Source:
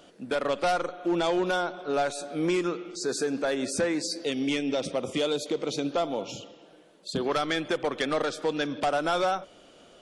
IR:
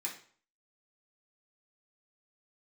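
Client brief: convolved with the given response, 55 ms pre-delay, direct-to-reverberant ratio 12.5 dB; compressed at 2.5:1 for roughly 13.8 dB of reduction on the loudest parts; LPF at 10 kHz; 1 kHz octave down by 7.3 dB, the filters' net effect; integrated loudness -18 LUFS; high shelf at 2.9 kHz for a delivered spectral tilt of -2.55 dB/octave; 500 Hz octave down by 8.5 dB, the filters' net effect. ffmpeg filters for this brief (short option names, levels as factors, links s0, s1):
-filter_complex "[0:a]lowpass=10000,equalizer=f=500:t=o:g=-9,equalizer=f=1000:t=o:g=-8.5,highshelf=f=2900:g=7.5,acompressor=threshold=0.00501:ratio=2.5,asplit=2[s0][s1];[1:a]atrim=start_sample=2205,adelay=55[s2];[s1][s2]afir=irnorm=-1:irlink=0,volume=0.211[s3];[s0][s3]amix=inputs=2:normalize=0,volume=16.8"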